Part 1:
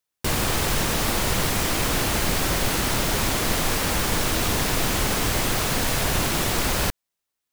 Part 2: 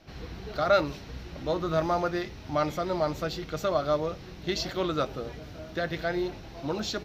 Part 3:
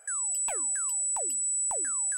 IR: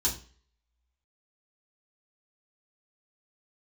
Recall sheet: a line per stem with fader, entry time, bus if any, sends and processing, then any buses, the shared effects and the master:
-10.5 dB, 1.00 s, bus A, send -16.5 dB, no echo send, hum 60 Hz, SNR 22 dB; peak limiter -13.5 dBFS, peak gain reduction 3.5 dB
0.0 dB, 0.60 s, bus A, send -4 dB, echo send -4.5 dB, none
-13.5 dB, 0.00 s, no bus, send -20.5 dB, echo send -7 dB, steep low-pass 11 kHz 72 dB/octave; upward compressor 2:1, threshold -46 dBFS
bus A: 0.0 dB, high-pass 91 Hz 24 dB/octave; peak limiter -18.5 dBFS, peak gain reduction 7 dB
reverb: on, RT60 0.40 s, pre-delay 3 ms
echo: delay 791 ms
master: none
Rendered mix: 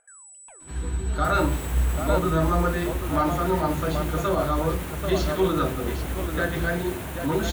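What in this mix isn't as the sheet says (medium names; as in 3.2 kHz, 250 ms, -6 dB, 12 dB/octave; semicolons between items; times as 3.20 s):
stem 1: send off; master: extra peaking EQ 5 kHz -13 dB 0.93 oct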